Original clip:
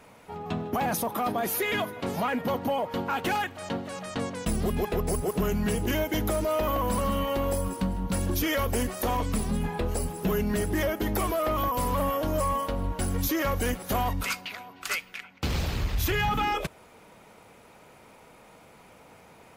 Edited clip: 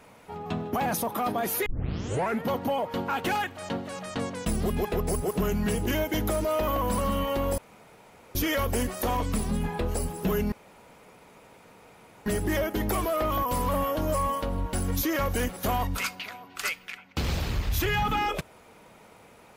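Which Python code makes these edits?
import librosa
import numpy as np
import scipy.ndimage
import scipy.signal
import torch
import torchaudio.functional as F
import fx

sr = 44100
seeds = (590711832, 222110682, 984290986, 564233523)

y = fx.edit(x, sr, fx.tape_start(start_s=1.66, length_s=0.77),
    fx.room_tone_fill(start_s=7.58, length_s=0.77),
    fx.insert_room_tone(at_s=10.52, length_s=1.74), tone=tone)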